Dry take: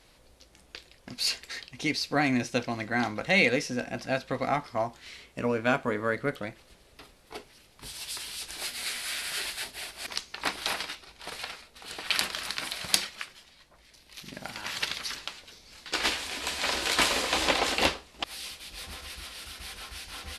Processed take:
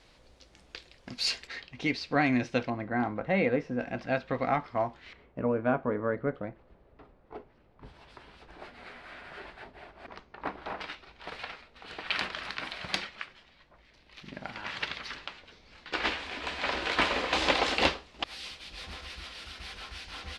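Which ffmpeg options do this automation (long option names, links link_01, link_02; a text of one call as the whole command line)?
ffmpeg -i in.wav -af "asetnsamples=nb_out_samples=441:pad=0,asendcmd='1.47 lowpass f 3200;2.7 lowpass f 1300;3.8 lowpass f 2700;5.13 lowpass f 1100;10.81 lowpass f 2800;17.33 lowpass f 4700',lowpass=6000" out.wav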